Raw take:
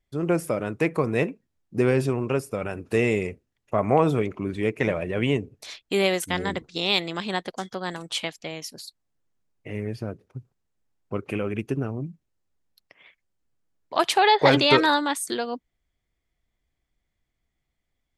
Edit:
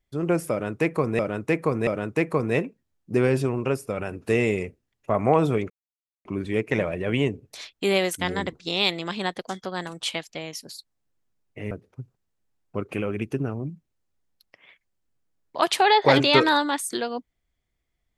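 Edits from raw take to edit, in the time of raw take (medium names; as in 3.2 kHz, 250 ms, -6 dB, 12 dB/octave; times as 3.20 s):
0.51–1.19 s: loop, 3 plays
4.34 s: insert silence 0.55 s
9.80–10.08 s: delete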